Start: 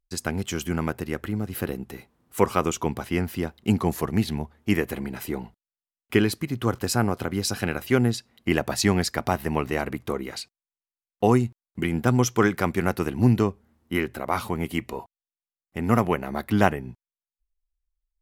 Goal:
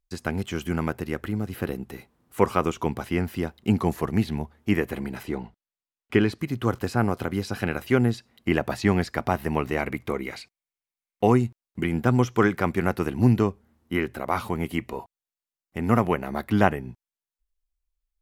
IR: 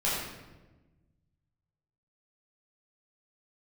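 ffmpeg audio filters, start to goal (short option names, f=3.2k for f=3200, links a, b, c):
-filter_complex "[0:a]asettb=1/sr,asplit=3[a][b][c];[a]atrim=end=5.234[d];[b]atrim=start=5.23:end=6.39,asetpts=PTS-STARTPTS,afade=t=in:d=0.004:c=qsin,afade=t=out:st=1.156:d=0.004:c=qsin,adynamicsmooth=sensitivity=7.5:basefreq=6.9k[e];[c]atrim=start=6.386[f];[d][e]acrossfade=d=0.004:c1=hsin:c2=qsin[g];[g][f]acrossfade=d=0.004:c1=qsin:c2=hsin,asettb=1/sr,asplit=3[h][i][j];[h]atrim=end=9.784[k];[i]atrim=start=9.78:end=11.33,asetpts=PTS-STARTPTS,afade=t=in:d=0.004:c=qsin,afade=t=out:st=1.546:d=0.004:c=qsin,equalizer=f=2.2k:w=5.7:g=9.5[l];[j]atrim=start=11.326[m];[k][l]acrossfade=d=0.004:c1=hsin:c2=qsin[n];[n][m]acrossfade=d=0.004:c1=qsin:c2=hsin,acrossover=split=3100[o][p];[p]acompressor=threshold=-42dB:ratio=4:attack=1:release=60[q];[o][q]amix=inputs=2:normalize=0"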